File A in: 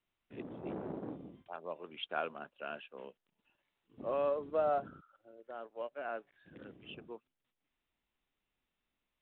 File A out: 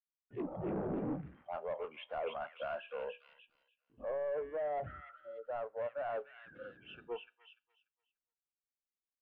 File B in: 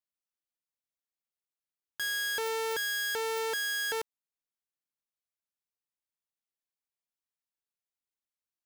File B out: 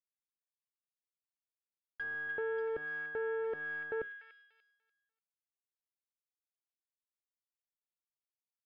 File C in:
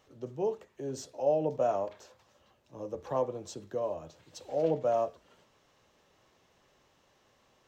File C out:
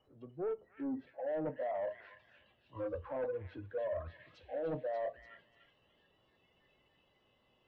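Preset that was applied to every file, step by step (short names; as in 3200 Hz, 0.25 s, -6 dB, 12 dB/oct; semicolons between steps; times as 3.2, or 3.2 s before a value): G.711 law mismatch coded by mu; treble ducked by the level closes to 1200 Hz, closed at -29.5 dBFS; gate with hold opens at -57 dBFS; treble ducked by the level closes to 1000 Hz, closed at -30.5 dBFS; spectral noise reduction 21 dB; high shelf 2000 Hz -11 dB; reverse; compressor 8:1, threshold -38 dBFS; reverse; soft clip -39 dBFS; air absorption 480 m; resonator 61 Hz, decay 0.31 s, harmonics all, mix 30%; on a send: delay with a stepping band-pass 0.293 s, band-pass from 2500 Hz, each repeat 0.7 oct, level -1 dB; on the sum: gain +10.5 dB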